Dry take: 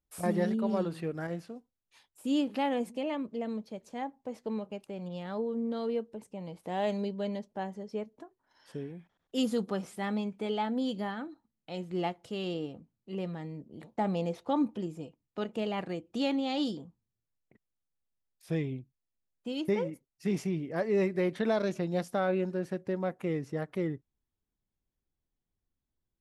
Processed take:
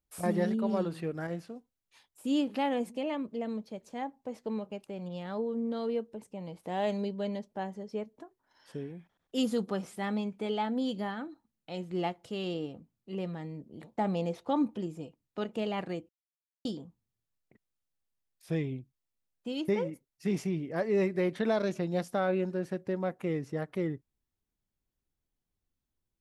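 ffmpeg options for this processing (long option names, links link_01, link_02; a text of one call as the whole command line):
ffmpeg -i in.wav -filter_complex "[0:a]asplit=3[link_01][link_02][link_03];[link_01]atrim=end=16.09,asetpts=PTS-STARTPTS,afade=type=out:start_time=16.086:duration=0.004:curve=hsin[link_04];[link_02]atrim=start=16.09:end=16.65,asetpts=PTS-STARTPTS,volume=0[link_05];[link_03]atrim=start=16.65,asetpts=PTS-STARTPTS,afade=type=in:duration=0.004:curve=hsin[link_06];[link_04][link_05][link_06]concat=n=3:v=0:a=1" out.wav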